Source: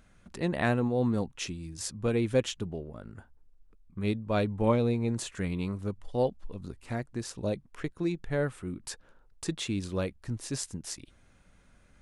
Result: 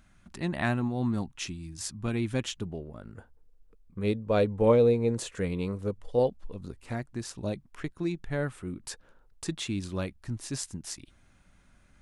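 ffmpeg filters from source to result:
ffmpeg -i in.wav -af "asetnsamples=nb_out_samples=441:pad=0,asendcmd='2.42 equalizer g -2;3.15 equalizer g 10;6.19 equalizer g 2.5;6.94 equalizer g -6;8.55 equalizer g 1;9.45 equalizer g -7',equalizer=frequency=480:width_type=o:width=0.4:gain=-13" out.wav

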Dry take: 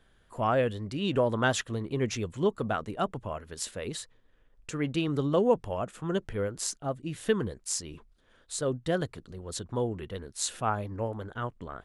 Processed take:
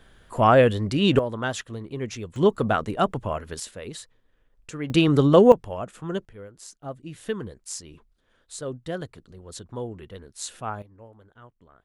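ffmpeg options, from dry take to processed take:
ffmpeg -i in.wav -af "asetnsamples=nb_out_samples=441:pad=0,asendcmd='1.19 volume volume -2dB;2.36 volume volume 7.5dB;3.6 volume volume -1dB;4.9 volume volume 10.5dB;5.52 volume volume 0.5dB;6.25 volume volume -11dB;6.83 volume volume -3dB;10.82 volume volume -15dB',volume=10dB" out.wav

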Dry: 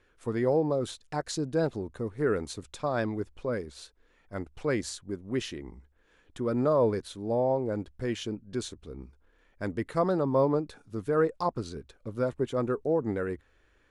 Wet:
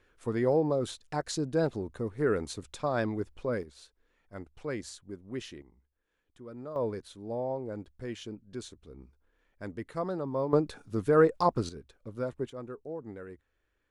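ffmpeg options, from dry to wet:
ffmpeg -i in.wav -af "asetnsamples=nb_out_samples=441:pad=0,asendcmd='3.63 volume volume -7dB;5.62 volume volume -16dB;6.76 volume volume -7dB;10.53 volume volume 3.5dB;11.69 volume volume -5dB;12.5 volume volume -12.5dB',volume=-0.5dB" out.wav

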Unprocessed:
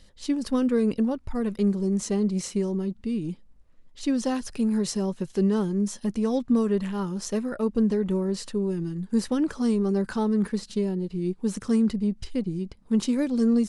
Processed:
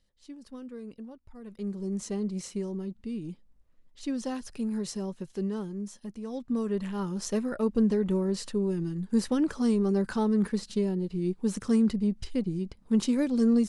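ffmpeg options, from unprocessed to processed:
ffmpeg -i in.wav -af "volume=5dB,afade=type=in:start_time=1.41:duration=0.52:silence=0.251189,afade=type=out:start_time=5.02:duration=1.2:silence=0.473151,afade=type=in:start_time=6.22:duration=1.02:silence=0.251189" out.wav

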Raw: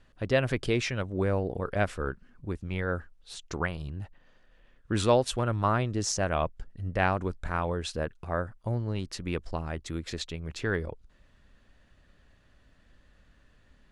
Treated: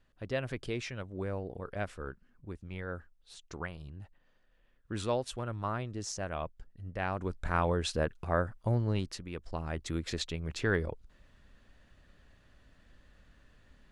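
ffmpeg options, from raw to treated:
ffmpeg -i in.wav -af "volume=12dB,afade=type=in:start_time=7.06:duration=0.54:silence=0.316228,afade=type=out:start_time=8.96:duration=0.33:silence=0.251189,afade=type=in:start_time=9.29:duration=0.57:silence=0.281838" out.wav

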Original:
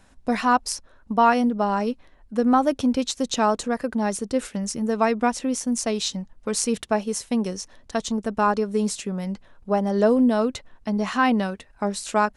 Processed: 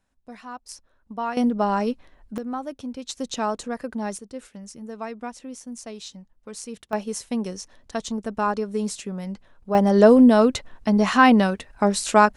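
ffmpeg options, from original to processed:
ffmpeg -i in.wav -af "asetnsamples=nb_out_samples=441:pad=0,asendcmd='0.69 volume volume -11dB;1.37 volume volume 0.5dB;2.38 volume volume -12dB;3.09 volume volume -5dB;4.18 volume volume -12.5dB;6.93 volume volume -3dB;9.75 volume volume 5.5dB',volume=-18.5dB" out.wav

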